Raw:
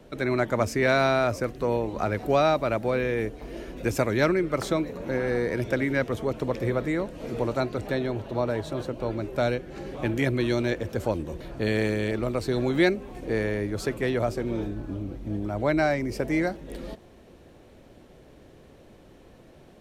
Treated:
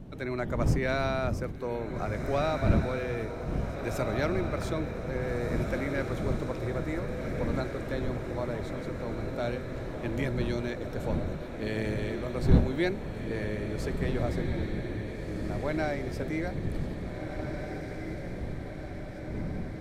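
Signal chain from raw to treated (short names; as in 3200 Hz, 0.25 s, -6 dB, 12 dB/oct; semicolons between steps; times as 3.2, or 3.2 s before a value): wind noise 170 Hz -27 dBFS; diffused feedback echo 1.733 s, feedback 63%, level -6 dB; gain -8 dB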